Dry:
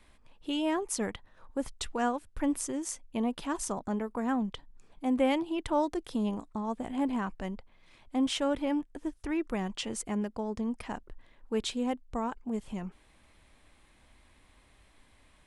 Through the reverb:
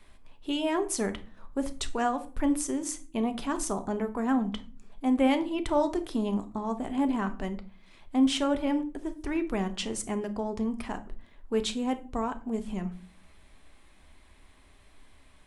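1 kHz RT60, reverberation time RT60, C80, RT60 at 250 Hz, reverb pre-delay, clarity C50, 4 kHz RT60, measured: 0.35 s, 0.40 s, 21.0 dB, 0.75 s, 3 ms, 15.5 dB, 0.25 s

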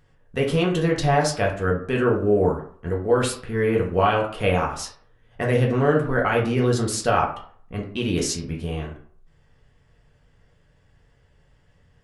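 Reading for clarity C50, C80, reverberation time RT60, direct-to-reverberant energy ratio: 7.5 dB, 12.0 dB, 0.50 s, -2.0 dB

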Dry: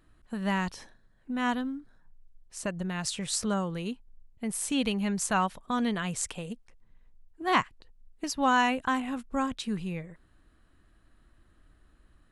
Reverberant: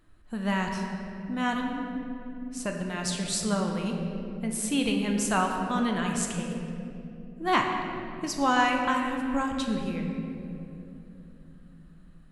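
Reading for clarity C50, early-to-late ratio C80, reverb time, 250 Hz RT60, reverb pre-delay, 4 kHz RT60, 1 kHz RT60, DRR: 3.0 dB, 4.5 dB, 2.9 s, 5.2 s, 3 ms, 1.6 s, 2.4 s, 1.5 dB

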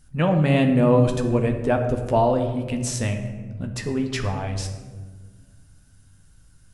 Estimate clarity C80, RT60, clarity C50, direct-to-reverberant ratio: 9.5 dB, 1.5 s, 7.5 dB, 4.0 dB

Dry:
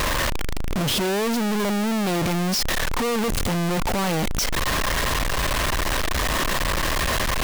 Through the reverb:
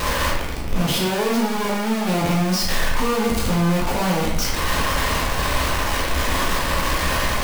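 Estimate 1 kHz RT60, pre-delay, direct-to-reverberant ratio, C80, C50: 0.80 s, 9 ms, -5.0 dB, 6.0 dB, 2.5 dB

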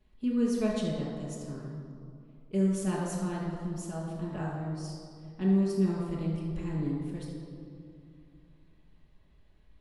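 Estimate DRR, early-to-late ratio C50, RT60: -8.5 dB, 0.5 dB, 2.4 s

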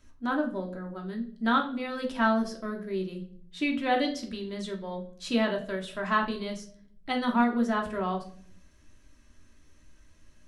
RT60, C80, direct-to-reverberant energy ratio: 0.55 s, 15.5 dB, 1.0 dB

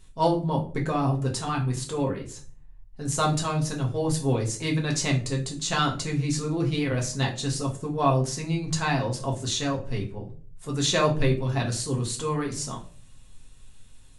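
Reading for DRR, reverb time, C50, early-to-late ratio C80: -1.5 dB, 0.45 s, 11.0 dB, 16.5 dB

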